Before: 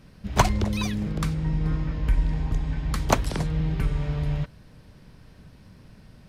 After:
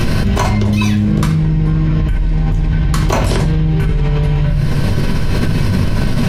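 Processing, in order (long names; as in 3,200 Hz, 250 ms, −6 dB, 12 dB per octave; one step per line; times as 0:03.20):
convolution reverb RT60 0.40 s, pre-delay 3 ms, DRR −2 dB
envelope flattener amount 100%
level −3.5 dB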